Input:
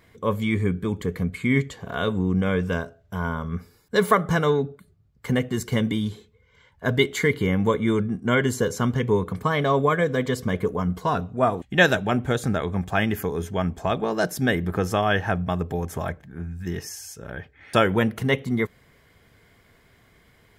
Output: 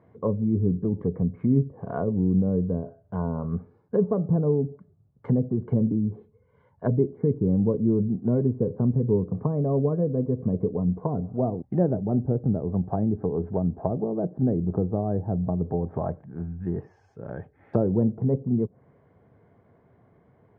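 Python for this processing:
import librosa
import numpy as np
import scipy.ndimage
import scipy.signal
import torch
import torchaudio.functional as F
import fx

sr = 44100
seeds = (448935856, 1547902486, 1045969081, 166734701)

y = fx.env_lowpass_down(x, sr, base_hz=390.0, full_db=-21.0)
y = scipy.signal.sosfilt(scipy.signal.cheby1(2, 1.0, [110.0, 790.0], 'bandpass', fs=sr, output='sos'), y)
y = y * librosa.db_to_amplitude(2.0)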